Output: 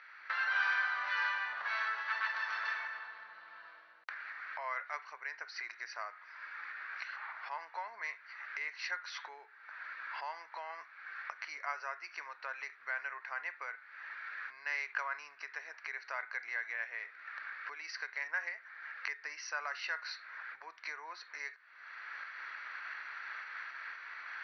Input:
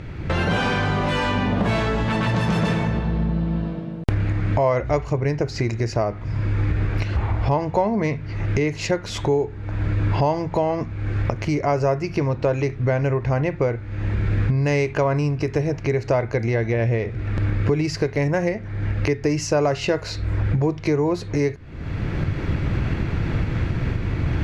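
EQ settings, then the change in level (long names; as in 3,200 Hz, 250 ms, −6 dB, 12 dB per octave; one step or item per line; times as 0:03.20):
high-pass filter 1,300 Hz 24 dB per octave
Chebyshev low-pass with heavy ripple 6,000 Hz, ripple 9 dB
spectral tilt −4.5 dB per octave
+1.0 dB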